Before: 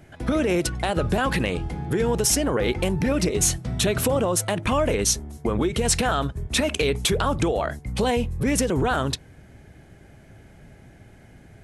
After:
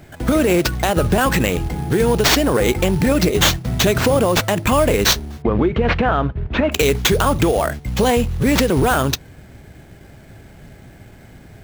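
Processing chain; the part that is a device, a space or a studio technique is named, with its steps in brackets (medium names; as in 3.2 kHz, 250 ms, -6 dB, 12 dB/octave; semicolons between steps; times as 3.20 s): early companding sampler (sample-rate reducer 10 kHz, jitter 0%; companded quantiser 6-bit); 5.42–6.72 s: Bessel low-pass 2 kHz, order 4; trim +6.5 dB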